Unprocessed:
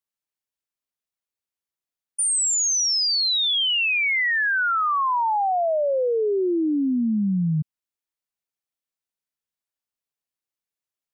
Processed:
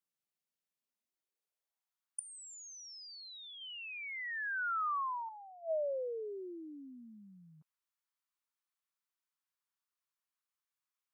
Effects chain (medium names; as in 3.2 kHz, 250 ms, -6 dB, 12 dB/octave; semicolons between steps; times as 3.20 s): 3.61–5.29 s: peaking EQ 1.4 kHz +10 dB 1.6 oct; high-pass sweep 160 Hz -> 1.1 kHz, 0.79–2.01 s; inverted gate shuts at -22 dBFS, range -25 dB; trim -4.5 dB